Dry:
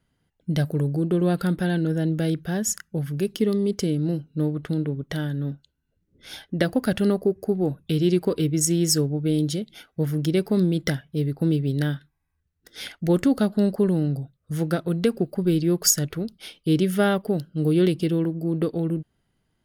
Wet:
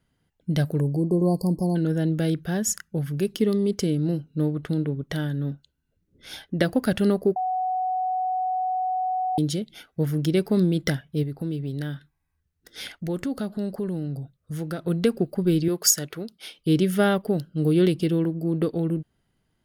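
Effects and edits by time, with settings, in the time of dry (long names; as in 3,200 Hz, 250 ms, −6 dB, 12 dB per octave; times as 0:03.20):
0:00.81–0:01.76: time-frequency box erased 1,100–4,200 Hz
0:07.36–0:09.38: beep over 743 Hz −22.5 dBFS
0:11.23–0:14.85: downward compressor 2 to 1, threshold −31 dBFS
0:15.68–0:16.59: high-pass filter 380 Hz 6 dB per octave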